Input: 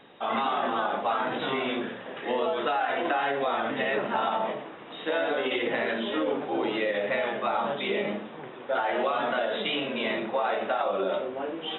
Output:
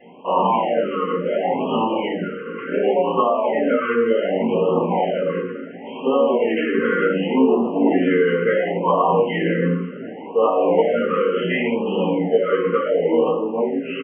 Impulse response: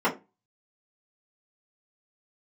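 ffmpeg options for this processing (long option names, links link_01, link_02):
-filter_complex "[0:a]asetrate=37044,aresample=44100[link_01];[1:a]atrim=start_sample=2205[link_02];[link_01][link_02]afir=irnorm=-1:irlink=0,afftfilt=real='re*(1-between(b*sr/1024,740*pow(1800/740,0.5+0.5*sin(2*PI*0.69*pts/sr))/1.41,740*pow(1800/740,0.5+0.5*sin(2*PI*0.69*pts/sr))*1.41))':imag='im*(1-between(b*sr/1024,740*pow(1800/740,0.5+0.5*sin(2*PI*0.69*pts/sr))/1.41,740*pow(1800/740,0.5+0.5*sin(2*PI*0.69*pts/sr))*1.41))':win_size=1024:overlap=0.75,volume=-6.5dB"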